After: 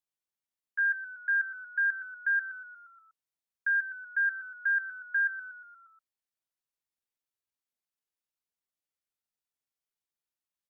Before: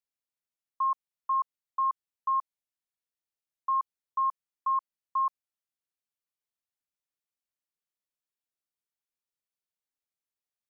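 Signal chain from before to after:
echo with shifted repeats 119 ms, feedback 59%, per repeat −32 Hz, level −13 dB
pitch shifter +7 semitones

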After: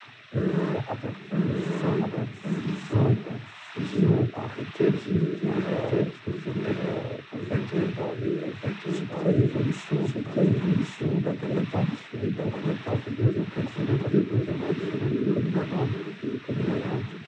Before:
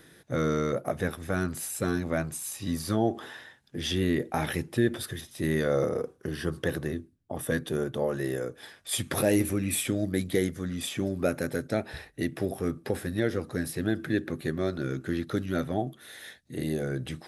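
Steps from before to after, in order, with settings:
vocoder with an arpeggio as carrier bare fifth, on B2, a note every 358 ms
parametric band 990 Hz +11.5 dB 0.38 octaves
noise in a band 820–3,000 Hz −48 dBFS
cochlear-implant simulation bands 12
rotating-speaker cabinet horn 1 Hz
on a send: single-tap delay 1,126 ms −3.5 dB
on the sum: level +4.5 dB

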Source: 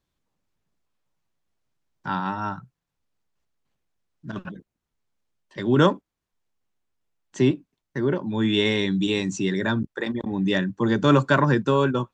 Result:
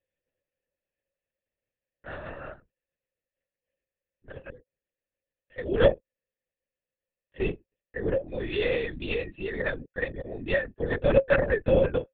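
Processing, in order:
formant filter e
high-frequency loss of the air 120 metres
linear-prediction vocoder at 8 kHz whisper
level +8 dB

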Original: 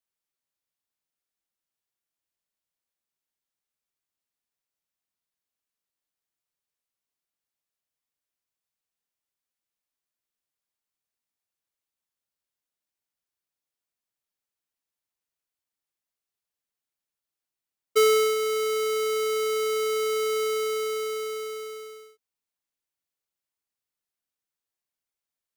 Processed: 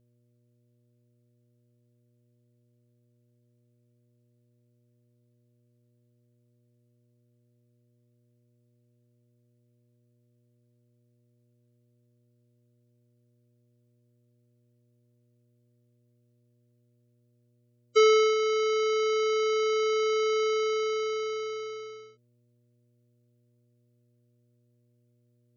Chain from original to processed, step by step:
gate on every frequency bin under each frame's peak −25 dB strong
hum with harmonics 120 Hz, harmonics 5, −68 dBFS −7 dB per octave

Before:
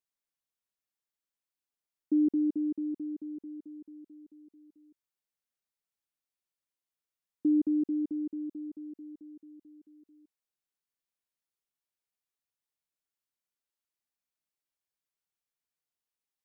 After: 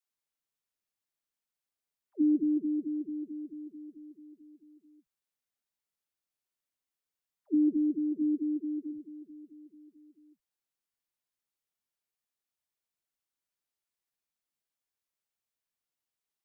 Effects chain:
0:08.12–0:08.84: low shelf with overshoot 220 Hz −7 dB, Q 3
all-pass dispersion lows, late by 147 ms, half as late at 330 Hz

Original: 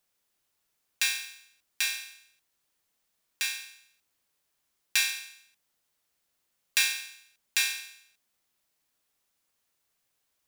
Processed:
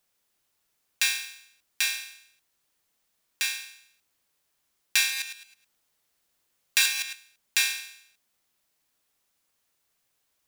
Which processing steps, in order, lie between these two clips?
0:05.01–0:07.15: delay that plays each chunk backwards 106 ms, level −6.5 dB
level +2.5 dB

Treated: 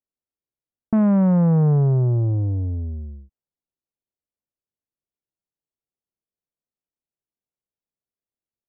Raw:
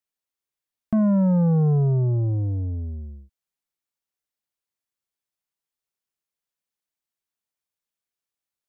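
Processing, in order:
low-pass that shuts in the quiet parts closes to 550 Hz, open at −17.5 dBFS
highs frequency-modulated by the lows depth 0.29 ms
level +2.5 dB

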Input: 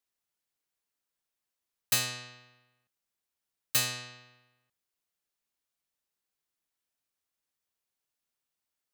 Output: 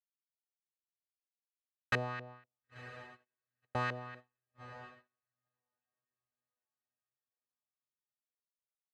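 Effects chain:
auto-filter low-pass saw up 4.1 Hz 460–1,800 Hz
on a send: feedback delay with all-pass diffusion 976 ms, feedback 49%, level −13 dB
on the sum: noise gate −53 dBFS, range −36 dB
level +1.5 dB

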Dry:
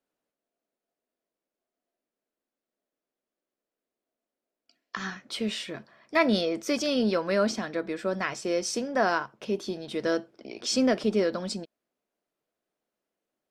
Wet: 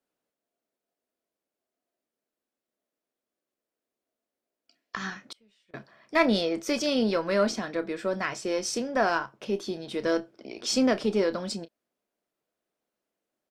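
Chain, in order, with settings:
harmonic generator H 4 −25 dB, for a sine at −10 dBFS
double-tracking delay 30 ms −13.5 dB
0:05.26–0:05.74: gate with flip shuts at −27 dBFS, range −34 dB

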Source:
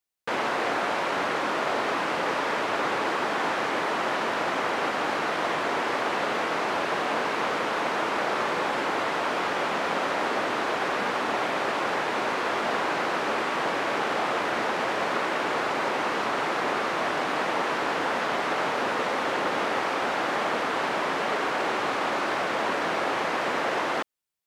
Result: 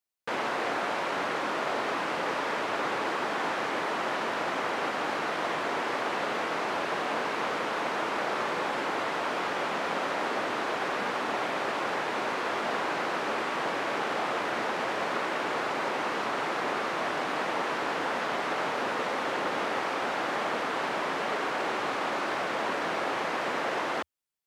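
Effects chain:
parametric band 80 Hz −5 dB 0.27 octaves
level −3.5 dB

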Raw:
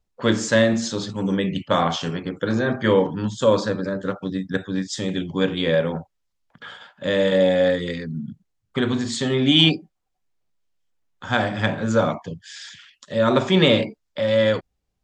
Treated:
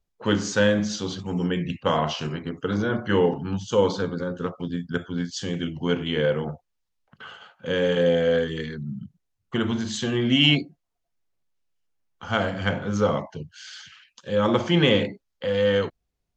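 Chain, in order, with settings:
wrong playback speed 48 kHz file played as 44.1 kHz
level −3 dB

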